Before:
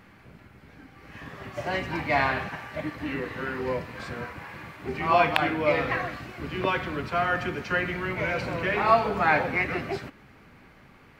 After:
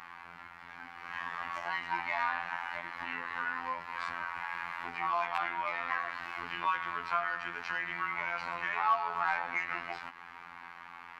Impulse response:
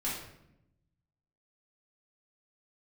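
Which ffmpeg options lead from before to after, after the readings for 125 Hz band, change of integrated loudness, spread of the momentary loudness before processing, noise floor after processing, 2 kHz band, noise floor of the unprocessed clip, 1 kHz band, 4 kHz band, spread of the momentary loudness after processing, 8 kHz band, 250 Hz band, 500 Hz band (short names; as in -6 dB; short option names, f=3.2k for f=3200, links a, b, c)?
-23.0 dB, -7.5 dB, 16 LU, -50 dBFS, -5.5 dB, -54 dBFS, -5.5 dB, -8.5 dB, 16 LU, n/a, -20.5 dB, -17.5 dB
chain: -filter_complex "[0:a]asplit=2[a][b];[b]highpass=f=720:p=1,volume=17dB,asoftclip=type=tanh:threshold=-2.5dB[c];[a][c]amix=inputs=2:normalize=0,lowpass=f=2k:p=1,volume=-6dB,acompressor=threshold=-35dB:ratio=2.5,lowshelf=f=710:t=q:w=3:g=-8.5,afftfilt=real='hypot(re,im)*cos(PI*b)':imag='0':win_size=2048:overlap=0.75"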